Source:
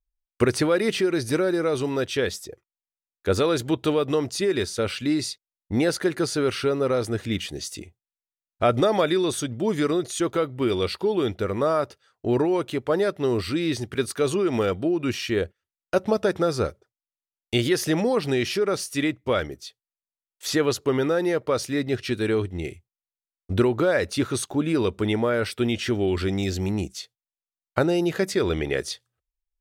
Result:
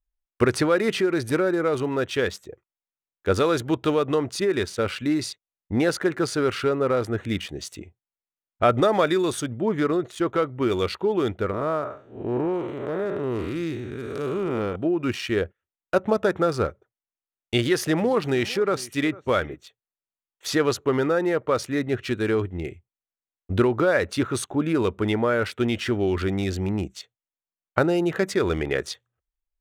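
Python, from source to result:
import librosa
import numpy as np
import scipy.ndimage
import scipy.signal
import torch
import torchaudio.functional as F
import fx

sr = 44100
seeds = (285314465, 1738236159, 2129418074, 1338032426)

y = fx.high_shelf(x, sr, hz=4000.0, db=-6.5, at=(9.6, 10.28))
y = fx.spec_blur(y, sr, span_ms=226.0, at=(11.51, 14.76))
y = fx.echo_single(y, sr, ms=450, db=-20.5, at=(17.57, 19.58))
y = fx.wiener(y, sr, points=9)
y = fx.dynamic_eq(y, sr, hz=1300.0, q=1.2, threshold_db=-40.0, ratio=4.0, max_db=4)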